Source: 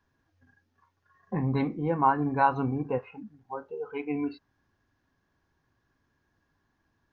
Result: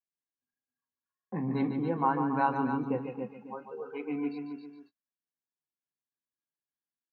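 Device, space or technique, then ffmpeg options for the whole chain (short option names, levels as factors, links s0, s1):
ducked delay: -filter_complex "[0:a]highpass=f=140:w=0.5412,highpass=f=140:w=1.3066,asplit=3[s0][s1][s2];[s1]adelay=269,volume=0.708[s3];[s2]apad=whole_len=325881[s4];[s3][s4]sidechaincompress=threshold=0.0112:ratio=6:attack=48:release=619[s5];[s0][s5]amix=inputs=2:normalize=0,aecho=1:1:145.8|277:0.398|0.355,adynamicequalizer=threshold=0.0112:dfrequency=240:dqfactor=1.8:tfrequency=240:tqfactor=1.8:attack=5:release=100:ratio=0.375:range=2:mode=boostabove:tftype=bell,agate=range=0.0355:threshold=0.00282:ratio=16:detection=peak,volume=0.562"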